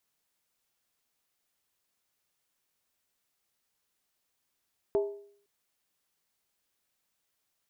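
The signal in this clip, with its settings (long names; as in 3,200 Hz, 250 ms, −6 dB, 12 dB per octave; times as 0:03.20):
struck skin length 0.51 s, lowest mode 405 Hz, decay 0.58 s, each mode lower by 9 dB, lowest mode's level −21.5 dB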